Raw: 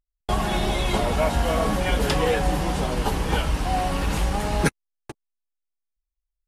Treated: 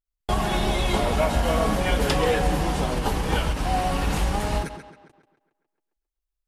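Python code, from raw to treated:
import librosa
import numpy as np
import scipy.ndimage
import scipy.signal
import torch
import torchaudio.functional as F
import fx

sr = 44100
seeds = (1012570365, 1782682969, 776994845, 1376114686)

y = fx.echo_tape(x, sr, ms=136, feedback_pct=45, wet_db=-11, lp_hz=4900.0, drive_db=7.0, wow_cents=21)
y = fx.end_taper(y, sr, db_per_s=120.0)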